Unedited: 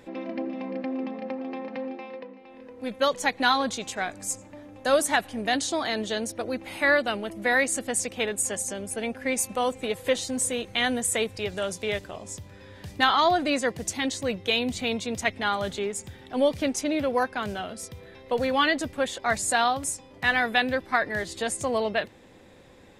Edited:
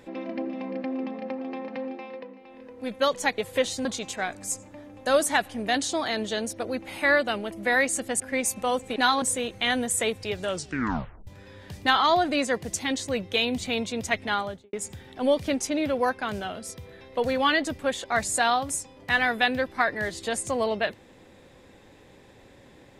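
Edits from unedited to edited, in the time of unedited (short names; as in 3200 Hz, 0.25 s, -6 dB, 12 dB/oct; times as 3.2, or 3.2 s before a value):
3.38–3.64 swap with 9.89–10.36
7.99–9.13 cut
11.63 tape stop 0.78 s
15.45–15.87 studio fade out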